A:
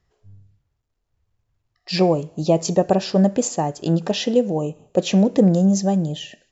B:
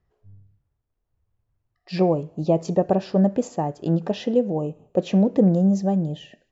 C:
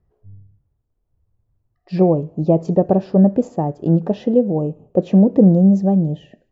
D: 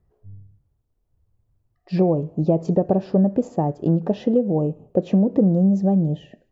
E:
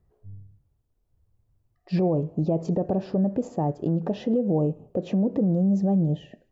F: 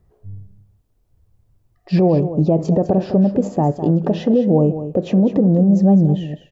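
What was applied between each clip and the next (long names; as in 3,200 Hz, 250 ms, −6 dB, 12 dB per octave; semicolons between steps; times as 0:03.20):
low-pass filter 1,300 Hz 6 dB per octave; level −2 dB
tilt shelving filter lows +8 dB, about 1,200 Hz; level −1 dB
downward compressor 3 to 1, threshold −15 dBFS, peak gain reduction 7 dB
brickwall limiter −14.5 dBFS, peak gain reduction 8.5 dB; level −1 dB
single-tap delay 205 ms −11.5 dB; level +8.5 dB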